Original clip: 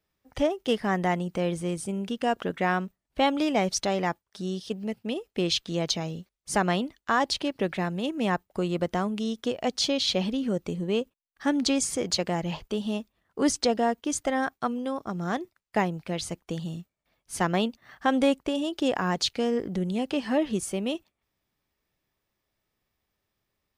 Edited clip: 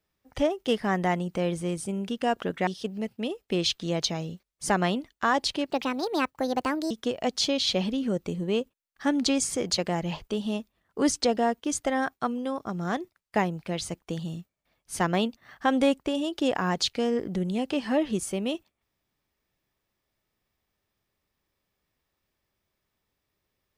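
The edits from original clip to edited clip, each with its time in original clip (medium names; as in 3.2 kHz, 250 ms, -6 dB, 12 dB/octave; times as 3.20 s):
2.67–4.53 s: delete
7.56–9.31 s: speed 145%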